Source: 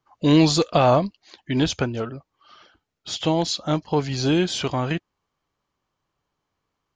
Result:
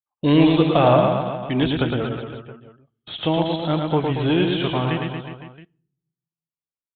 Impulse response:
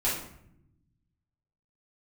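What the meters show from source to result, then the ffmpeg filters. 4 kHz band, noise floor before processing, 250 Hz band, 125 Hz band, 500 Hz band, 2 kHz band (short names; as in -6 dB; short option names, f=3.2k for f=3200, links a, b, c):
-1.0 dB, -80 dBFS, +2.5 dB, +2.5 dB, +2.5 dB, +2.5 dB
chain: -filter_complex "[0:a]agate=range=-33dB:threshold=-43dB:ratio=16:detection=peak,aecho=1:1:110|231|364.1|510.5|671.6:0.631|0.398|0.251|0.158|0.1,asplit=2[a][b];[1:a]atrim=start_sample=2205,asetrate=57330,aresample=44100[c];[b][c]afir=irnorm=-1:irlink=0,volume=-31dB[d];[a][d]amix=inputs=2:normalize=0,aresample=8000,aresample=44100"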